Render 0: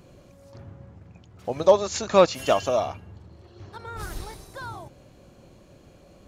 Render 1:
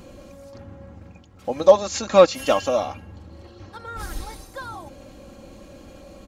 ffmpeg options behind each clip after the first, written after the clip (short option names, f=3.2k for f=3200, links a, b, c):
-af "aecho=1:1:3.7:0.59,areverse,acompressor=mode=upward:threshold=-36dB:ratio=2.5,areverse,volume=1dB"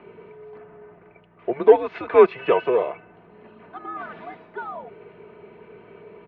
-filter_complex "[0:a]asplit=2[a][b];[b]volume=18dB,asoftclip=hard,volume=-18dB,volume=-6dB[c];[a][c]amix=inputs=2:normalize=0,aeval=exprs='val(0)+0.0224*(sin(2*PI*60*n/s)+sin(2*PI*2*60*n/s)/2+sin(2*PI*3*60*n/s)/3+sin(2*PI*4*60*n/s)/4+sin(2*PI*5*60*n/s)/5)':c=same,highpass=f=400:t=q:w=0.5412,highpass=f=400:t=q:w=1.307,lowpass=f=2.7k:t=q:w=0.5176,lowpass=f=2.7k:t=q:w=0.7071,lowpass=f=2.7k:t=q:w=1.932,afreqshift=-130,volume=-1dB"